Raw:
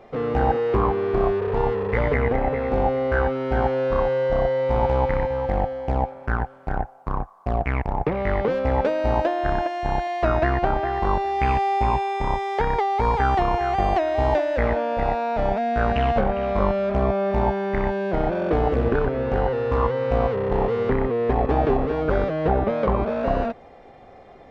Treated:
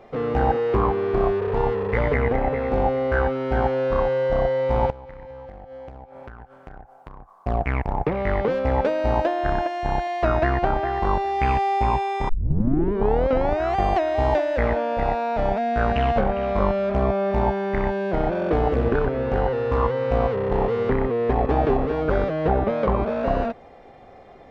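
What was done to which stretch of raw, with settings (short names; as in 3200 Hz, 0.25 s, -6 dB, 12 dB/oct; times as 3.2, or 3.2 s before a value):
4.9–7.36 compressor 16:1, threshold -35 dBFS
12.29 tape start 1.46 s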